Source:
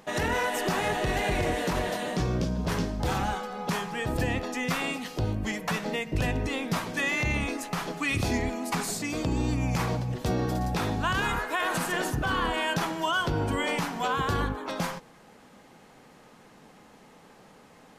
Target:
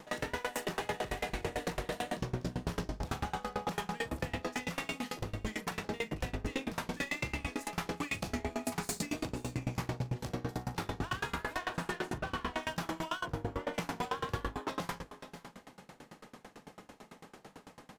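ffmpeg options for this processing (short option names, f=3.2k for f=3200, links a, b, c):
-filter_complex "[0:a]asettb=1/sr,asplit=3[a][b][c];[a]atrim=end=11.544[d];[b]atrim=start=11.54:end=12.63,asetpts=PTS-STARTPTS,afade=t=in:d=0.004:c=qsin,afade=t=out:st=1.086:d=0.004:c=qsin,aemphasis=mode=reproduction:type=50fm[e];[c]atrim=start=12.626[f];[d][e]acrossfade=d=0.004:c1=hsin:c2=qsin[g];[g][f]acrossfade=d=0.004:c1=qsin:c2=hsin,asplit=3[h][i][j];[h]afade=t=out:st=13.21:d=0.02[k];[i]lowpass=1.2k,afade=t=in:st=13.21:d=0.02,afade=t=out:st=13.73:d=0.02[l];[j]afade=t=in:st=13.73:d=0.02[m];[k][l][m]amix=inputs=3:normalize=0,acompressor=threshold=-31dB:ratio=6,volume=33.5dB,asoftclip=hard,volume=-33.5dB,asplit=2[n][o];[o]adelay=41,volume=-4.5dB[p];[n][p]amix=inputs=2:normalize=0,asplit=2[q][r];[r]aecho=0:1:528:0.224[s];[q][s]amix=inputs=2:normalize=0,aeval=exprs='val(0)*pow(10,-26*if(lt(mod(9*n/s,1),2*abs(9)/1000),1-mod(9*n/s,1)/(2*abs(9)/1000),(mod(9*n/s,1)-2*abs(9)/1000)/(1-2*abs(9)/1000))/20)':c=same,volume=5.5dB"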